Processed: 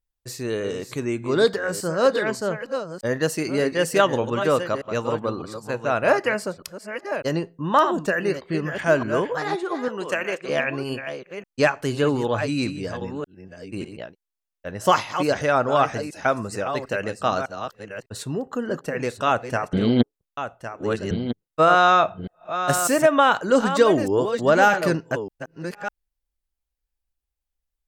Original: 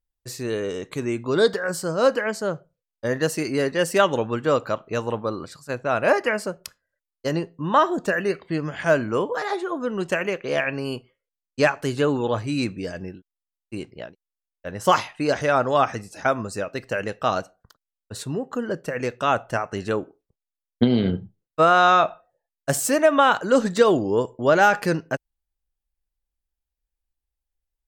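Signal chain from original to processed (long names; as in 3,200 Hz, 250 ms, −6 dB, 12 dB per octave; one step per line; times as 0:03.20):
delay that plays each chunk backwards 602 ms, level −9 dB
0:09.88–0:10.49: high-pass filter 450 Hz 6 dB per octave
0:19.73–0:21.11: reverse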